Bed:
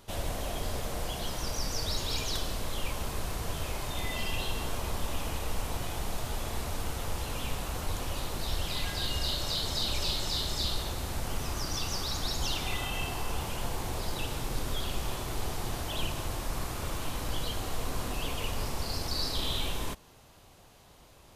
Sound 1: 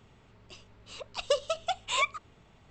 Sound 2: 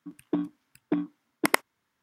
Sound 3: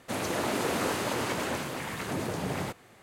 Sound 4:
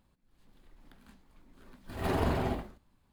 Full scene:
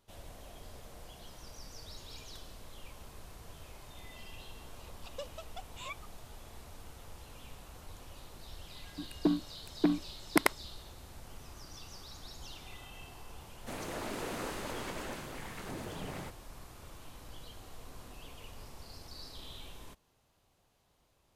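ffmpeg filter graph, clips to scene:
-filter_complex "[0:a]volume=0.158[s0];[2:a]alimiter=limit=0.447:level=0:latency=1:release=322[s1];[1:a]atrim=end=2.7,asetpts=PTS-STARTPTS,volume=0.15,afade=t=in:d=0.004:c=hsin,afade=t=out:st=2.696:d=0.004:c=hsin,adelay=3880[s2];[s1]atrim=end=2.02,asetpts=PTS-STARTPTS,volume=0.944,afade=t=in:d=0.004:c=hsin,afade=t=out:st=2.016:d=0.004:c=hsin,adelay=8920[s3];[3:a]atrim=end=3.02,asetpts=PTS-STARTPTS,volume=0.316,afade=t=in:d=0.004:c=hsin,afade=t=out:st=3.016:d=0.004:c=hsin,adelay=13580[s4];[s0][s2][s3][s4]amix=inputs=4:normalize=0"

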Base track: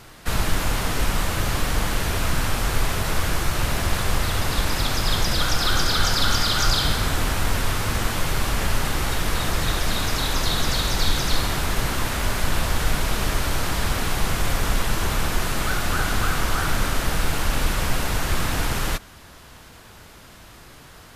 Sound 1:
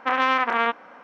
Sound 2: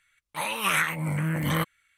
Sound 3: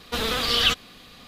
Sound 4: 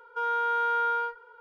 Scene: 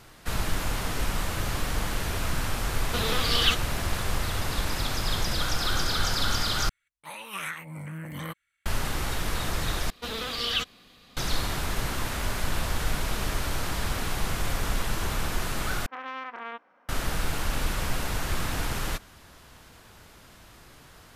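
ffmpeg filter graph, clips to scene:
-filter_complex "[3:a]asplit=2[s0][s1];[0:a]volume=0.501,asplit=4[s2][s3][s4][s5];[s2]atrim=end=6.694[s6];[2:a]atrim=end=1.97,asetpts=PTS-STARTPTS,volume=0.299[s7];[s3]atrim=start=8.656:end=9.904[s8];[s1]atrim=end=1.27,asetpts=PTS-STARTPTS,volume=0.422[s9];[s4]atrim=start=11.166:end=15.864[s10];[1:a]atrim=end=1.03,asetpts=PTS-STARTPTS,volume=0.158[s11];[s5]atrim=start=16.886[s12];[s0]atrim=end=1.27,asetpts=PTS-STARTPTS,volume=0.668,afade=t=in:d=0.004:c=hsin,afade=t=out:st=1.266:d=0.004:c=hsin,adelay=2810[s13];[s6][s7]acrossfade=d=0.004:c1=hsin:c2=hsin[s14];[s14][s8]acrossfade=d=0.004:c1=hsin:c2=hsin[s15];[s15][s9]acrossfade=d=0.004:c1=hsin:c2=hsin[s16];[s16][s10]acrossfade=d=0.004:c1=hsin:c2=hsin[s17];[s17][s11]acrossfade=d=0.004:c1=hsin:c2=hsin[s18];[s18][s12]acrossfade=d=0.004:c1=hsin:c2=hsin[s19];[s19][s13]amix=inputs=2:normalize=0"

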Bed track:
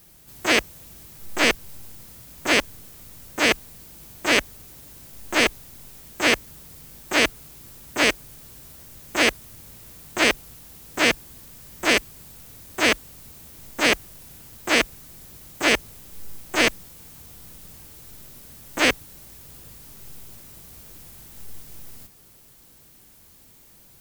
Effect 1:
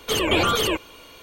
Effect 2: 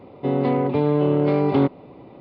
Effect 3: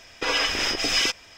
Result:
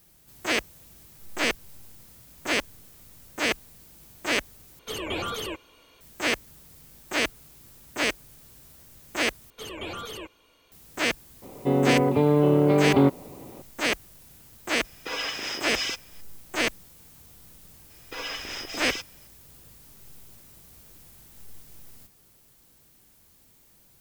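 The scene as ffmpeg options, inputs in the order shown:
-filter_complex "[1:a]asplit=2[s0][s1];[3:a]asplit=2[s2][s3];[0:a]volume=0.473[s4];[s2]highpass=130[s5];[s4]asplit=3[s6][s7][s8];[s6]atrim=end=4.794[s9];[s0]atrim=end=1.22,asetpts=PTS-STARTPTS,volume=0.282[s10];[s7]atrim=start=6.006:end=9.504[s11];[s1]atrim=end=1.22,asetpts=PTS-STARTPTS,volume=0.158[s12];[s8]atrim=start=10.716[s13];[2:a]atrim=end=2.2,asetpts=PTS-STARTPTS,volume=0.944,afade=t=in:d=0.004:c=hsin,afade=t=out:st=2.196:d=0.004:c=hsin,adelay=11420[s14];[s5]atrim=end=1.37,asetpts=PTS-STARTPTS,volume=0.422,afade=t=in:d=0.004:c=hsin,afade=t=out:st=1.366:d=0.004:c=hsin,adelay=14840[s15];[s3]atrim=end=1.37,asetpts=PTS-STARTPTS,volume=0.282,afade=t=in:d=0.004:c=hsin,afade=t=out:st=1.366:d=0.004:c=hsin,adelay=17900[s16];[s9][s10]acrossfade=d=0.004:c1=hsin:c2=hsin[s17];[s17][s11]acrossfade=d=0.004:c1=hsin:c2=hsin[s18];[s18][s12]acrossfade=d=0.004:c1=hsin:c2=hsin[s19];[s19][s13]acrossfade=d=0.004:c1=hsin:c2=hsin[s20];[s20][s14][s15][s16]amix=inputs=4:normalize=0"

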